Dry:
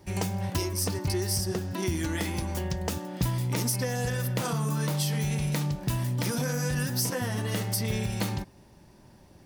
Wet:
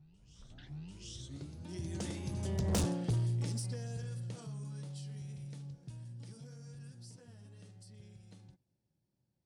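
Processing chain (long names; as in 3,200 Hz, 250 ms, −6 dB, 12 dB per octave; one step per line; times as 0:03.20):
turntable start at the beginning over 2.01 s
source passing by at 0:02.80, 16 m/s, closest 1 metre
low-shelf EQ 64 Hz −9 dB
on a send: backwards echo 744 ms −16 dB
on the sum: downsampling to 22,050 Hz
octave-band graphic EQ 125/1,000/2,000 Hz +9/−7/−5 dB
soft clipping −37 dBFS, distortion −7 dB
level +9.5 dB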